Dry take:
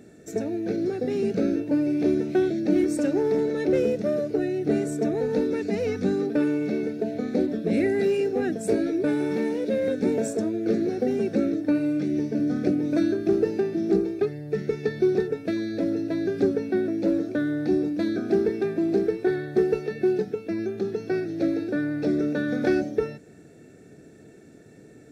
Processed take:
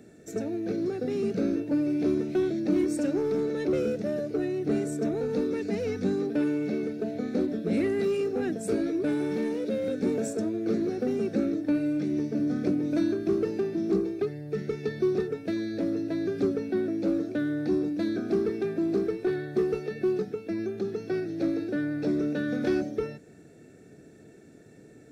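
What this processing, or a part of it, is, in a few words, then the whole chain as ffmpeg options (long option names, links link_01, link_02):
one-band saturation: -filter_complex "[0:a]acrossover=split=400|2700[link_01][link_02][link_03];[link_02]asoftclip=type=tanh:threshold=-28dB[link_04];[link_01][link_04][link_03]amix=inputs=3:normalize=0,volume=-2.5dB"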